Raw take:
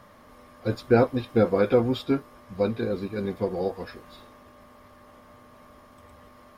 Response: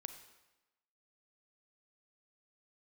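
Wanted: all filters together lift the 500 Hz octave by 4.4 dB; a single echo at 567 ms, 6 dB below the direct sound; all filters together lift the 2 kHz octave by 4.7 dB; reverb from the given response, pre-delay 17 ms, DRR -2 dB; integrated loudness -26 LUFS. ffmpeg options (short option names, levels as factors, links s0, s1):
-filter_complex "[0:a]equalizer=f=500:t=o:g=4.5,equalizer=f=2000:t=o:g=6.5,aecho=1:1:567:0.501,asplit=2[s0][s1];[1:a]atrim=start_sample=2205,adelay=17[s2];[s1][s2]afir=irnorm=-1:irlink=0,volume=2[s3];[s0][s3]amix=inputs=2:normalize=0,volume=0.398"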